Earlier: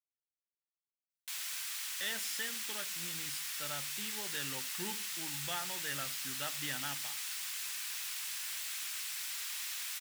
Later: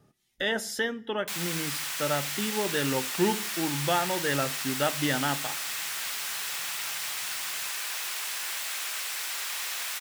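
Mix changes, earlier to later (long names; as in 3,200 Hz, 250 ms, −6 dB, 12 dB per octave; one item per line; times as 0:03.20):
speech: entry −1.60 s
master: remove guitar amp tone stack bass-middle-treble 5-5-5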